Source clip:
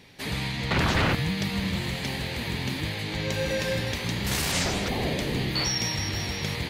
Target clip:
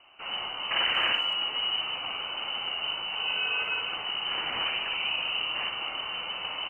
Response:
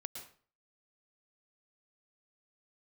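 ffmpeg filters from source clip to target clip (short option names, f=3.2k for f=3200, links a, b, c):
-filter_complex "[0:a]asplit=2[a][b];[b]equalizer=f=320:w=5:g=8[c];[1:a]atrim=start_sample=2205,atrim=end_sample=3969,adelay=57[d];[c][d]afir=irnorm=-1:irlink=0,volume=0dB[e];[a][e]amix=inputs=2:normalize=0,lowpass=f=2.6k:t=q:w=0.5098,lowpass=f=2.6k:t=q:w=0.6013,lowpass=f=2.6k:t=q:w=0.9,lowpass=f=2.6k:t=q:w=2.563,afreqshift=-3100,asplit=2[f][g];[g]adelay=180,highpass=300,lowpass=3.4k,asoftclip=type=hard:threshold=-19dB,volume=-20dB[h];[f][h]amix=inputs=2:normalize=0,volume=-4dB"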